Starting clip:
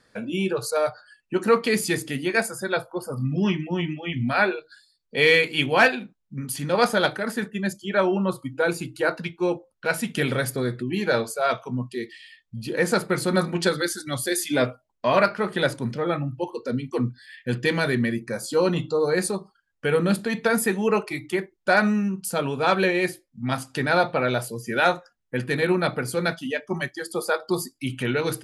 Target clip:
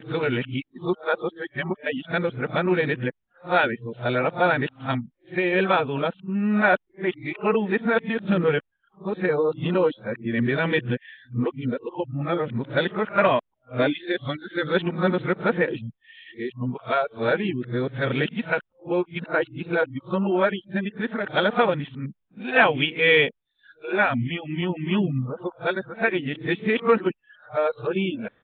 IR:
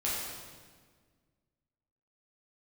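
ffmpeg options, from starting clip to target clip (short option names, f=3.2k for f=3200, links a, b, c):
-af "areverse,aresample=8000,aresample=44100"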